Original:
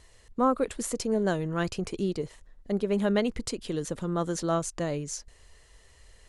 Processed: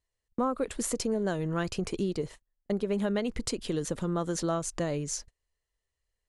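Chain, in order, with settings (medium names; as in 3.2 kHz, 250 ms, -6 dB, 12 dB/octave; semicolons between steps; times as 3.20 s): gate -43 dBFS, range -31 dB; compression 4:1, threshold -28 dBFS, peak gain reduction 8.5 dB; trim +2 dB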